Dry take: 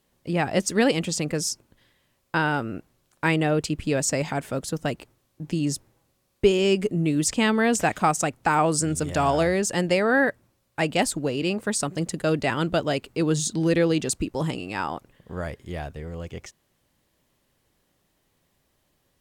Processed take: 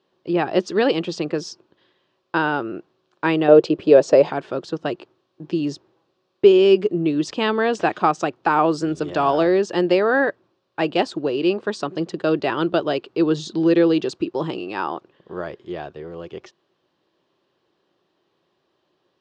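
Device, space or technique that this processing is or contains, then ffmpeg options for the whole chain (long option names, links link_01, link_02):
kitchen radio: -filter_complex "[0:a]asettb=1/sr,asplit=3[link_01][link_02][link_03];[link_01]atrim=end=3.484[link_04];[link_02]atrim=start=3.48:end=4.3,asetpts=PTS-STARTPTS,afade=type=in:duration=0.004:curve=qsin,afade=type=out:start_time=0.816:duration=0.004:curve=qsin,equalizer=frequency=530:width=1.3:gain=13[link_05];[link_03]atrim=start=4.296[link_06];[link_04][link_05]acrossfade=duration=0.004:curve1=hsin:curve2=qsin[link_07];[link_07][link_06]acrossfade=duration=0.004:curve1=qsin:curve2=hsin,highpass=210,equalizer=frequency=240:width_type=q:width=4:gain=-6,equalizer=frequency=360:width_type=q:width=4:gain=9,equalizer=frequency=1100:width_type=q:width=4:gain=3,equalizer=frequency=2100:width_type=q:width=4:gain=-8,lowpass=frequency=4500:width=0.5412,lowpass=frequency=4500:width=1.3066,volume=2.5dB"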